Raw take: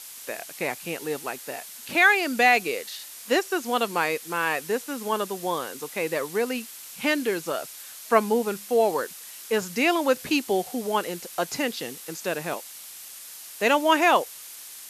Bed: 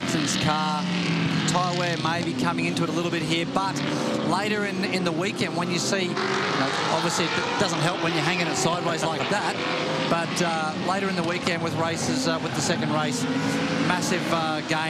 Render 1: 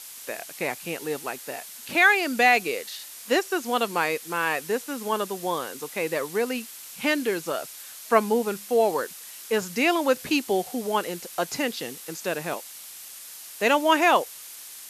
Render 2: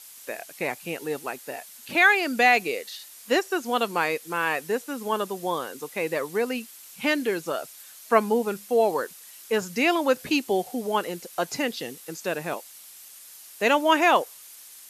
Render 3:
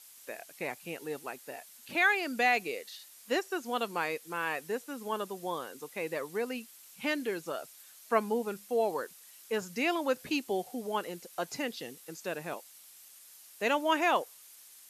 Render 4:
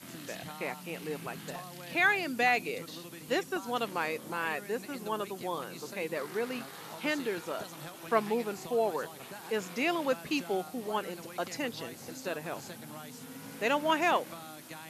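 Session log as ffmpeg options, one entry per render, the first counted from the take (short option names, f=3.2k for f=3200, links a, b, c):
-af anull
-af "afftdn=nr=6:nf=-42"
-af "volume=-8dB"
-filter_complex "[1:a]volume=-21.5dB[a];[0:a][a]amix=inputs=2:normalize=0"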